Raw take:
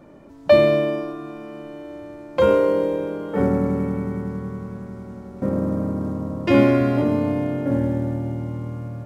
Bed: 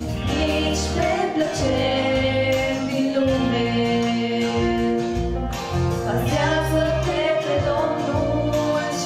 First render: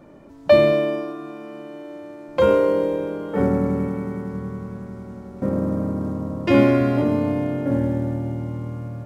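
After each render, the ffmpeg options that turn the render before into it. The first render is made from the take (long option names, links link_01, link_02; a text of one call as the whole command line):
ffmpeg -i in.wav -filter_complex "[0:a]asettb=1/sr,asplit=3[link_01][link_02][link_03];[link_01]atrim=end=0.724[link_04];[link_02]atrim=start=0.72:end=2.28,asetpts=PTS-STARTPTS,afade=type=in:duration=0.004:curve=qsin,afade=type=out:start_time=1.556:duration=0.004:curve=qsin,highpass=170[link_05];[link_03]atrim=start=2.276[link_06];[link_04][link_05]acrossfade=duration=0.004:curve1=hsin:curve2=qsin[link_07];[link_07][link_06]acrossfade=duration=0.004:curve1=qsin:curve2=hsin,asettb=1/sr,asplit=3[link_08][link_09][link_10];[link_08]atrim=end=3.884[link_11];[link_09]atrim=start=3.88:end=4.34,asetpts=PTS-STARTPTS,afade=type=in:duration=0.004:curve=qsin,afade=type=out:start_time=0.456:duration=0.004:curve=qsin,highpass=frequency=140:poles=1[link_12];[link_10]atrim=start=4.336[link_13];[link_11][link_12]acrossfade=duration=0.004:curve1=hsin:curve2=qsin[link_14];[link_14][link_13]acrossfade=duration=0.004:curve1=qsin:curve2=hsin" out.wav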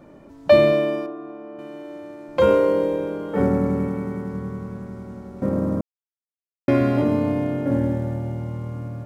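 ffmpeg -i in.wav -filter_complex "[0:a]asettb=1/sr,asplit=3[link_01][link_02][link_03];[link_01]atrim=end=1.064[link_04];[link_02]atrim=start=1.06:end=1.59,asetpts=PTS-STARTPTS,afade=type=in:duration=0.004:curve=qsin,afade=type=out:start_time=0.526:duration=0.004:curve=qsin,bandpass=frequency=520:width_type=q:width=0.63[link_05];[link_03]atrim=start=1.586[link_06];[link_04][link_05]acrossfade=duration=0.004:curve1=hsin:curve2=qsin[link_07];[link_07][link_06]acrossfade=duration=0.004:curve1=qsin:curve2=hsin,asettb=1/sr,asplit=3[link_08][link_09][link_10];[link_08]atrim=end=7.954[link_11];[link_09]atrim=start=7.95:end=8.75,asetpts=PTS-STARTPTS,afade=type=in:duration=0.004:curve=qsin,afade=type=out:start_time=0.796:duration=0.004:curve=qsin,equalizer=frequency=290:width_type=o:width=0.32:gain=-8[link_12];[link_10]atrim=start=8.746[link_13];[link_11][link_12]acrossfade=duration=0.004:curve1=hsin:curve2=qsin[link_14];[link_14][link_13]acrossfade=duration=0.004:curve1=qsin:curve2=hsin,asplit=3[link_15][link_16][link_17];[link_15]atrim=end=5.81,asetpts=PTS-STARTPTS,afade=type=out:start_time=5.806:duration=0.004:curve=hsin[link_18];[link_16]atrim=start=5.81:end=6.68,asetpts=PTS-STARTPTS,volume=0[link_19];[link_17]atrim=start=6.68,asetpts=PTS-STARTPTS,afade=type=in:duration=0.004:curve=hsin[link_20];[link_18][link_19][link_20]concat=n=3:v=0:a=1" out.wav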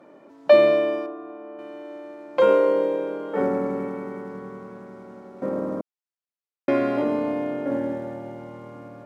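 ffmpeg -i in.wav -af "highpass=340,aemphasis=mode=reproduction:type=cd" out.wav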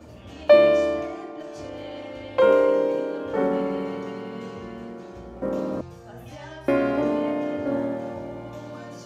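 ffmpeg -i in.wav -i bed.wav -filter_complex "[1:a]volume=-20dB[link_01];[0:a][link_01]amix=inputs=2:normalize=0" out.wav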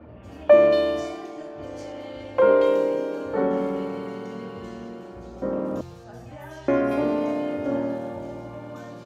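ffmpeg -i in.wav -filter_complex "[0:a]acrossover=split=2600[link_01][link_02];[link_02]adelay=230[link_03];[link_01][link_03]amix=inputs=2:normalize=0" out.wav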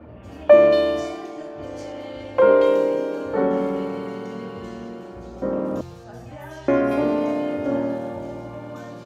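ffmpeg -i in.wav -af "volume=2.5dB" out.wav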